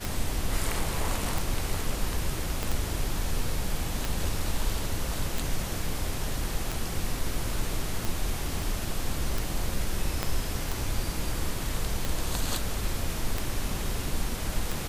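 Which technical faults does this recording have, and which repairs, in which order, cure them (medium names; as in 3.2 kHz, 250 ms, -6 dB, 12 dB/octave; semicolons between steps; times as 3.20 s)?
tick 45 rpm
2.63 s: pop
8.62 s: pop
10.23 s: pop -12 dBFS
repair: de-click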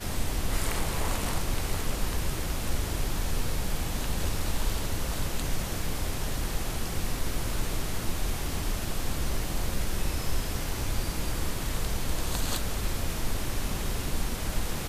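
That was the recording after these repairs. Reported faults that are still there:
2.63 s: pop
8.62 s: pop
10.23 s: pop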